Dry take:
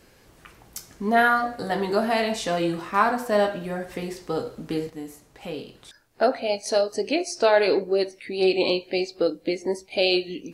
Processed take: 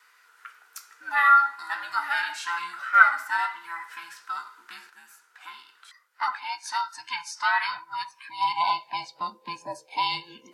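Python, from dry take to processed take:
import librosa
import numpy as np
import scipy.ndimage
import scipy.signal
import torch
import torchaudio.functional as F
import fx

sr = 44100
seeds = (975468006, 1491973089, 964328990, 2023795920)

y = fx.band_invert(x, sr, width_hz=500)
y = fx.filter_sweep_highpass(y, sr, from_hz=1400.0, to_hz=540.0, start_s=7.86, end_s=9.27, q=5.9)
y = F.gain(torch.from_numpy(y), -5.5).numpy()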